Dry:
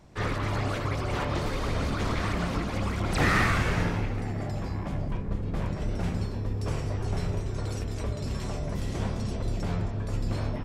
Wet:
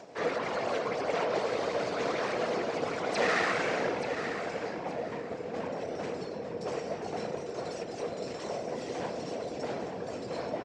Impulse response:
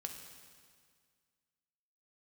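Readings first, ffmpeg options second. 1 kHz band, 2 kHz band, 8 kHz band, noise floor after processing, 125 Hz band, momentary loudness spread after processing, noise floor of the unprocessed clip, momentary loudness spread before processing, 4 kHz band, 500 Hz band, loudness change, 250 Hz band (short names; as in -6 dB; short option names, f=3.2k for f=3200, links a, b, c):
0.0 dB, -2.0 dB, -3.5 dB, -40 dBFS, -18.5 dB, 8 LU, -34 dBFS, 7 LU, -2.0 dB, +4.5 dB, -3.0 dB, -6.5 dB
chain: -filter_complex "[0:a]acompressor=mode=upward:threshold=-38dB:ratio=2.5,afftfilt=real='hypot(re,im)*cos(2*PI*random(0))':imag='hypot(re,im)*sin(2*PI*random(1))':win_size=512:overlap=0.75,volume=27.5dB,asoftclip=hard,volume=-27.5dB,highpass=340,equalizer=f=480:t=q:w=4:g=9,equalizer=f=690:t=q:w=4:g=6,equalizer=f=1.2k:t=q:w=4:g=-3,equalizer=f=3.4k:t=q:w=4:g=-3,lowpass=f=7.2k:w=0.5412,lowpass=f=7.2k:w=1.3066,asplit=2[a][b];[b]aecho=0:1:879|1758|2637:0.335|0.0938|0.0263[c];[a][c]amix=inputs=2:normalize=0,volume=5dB"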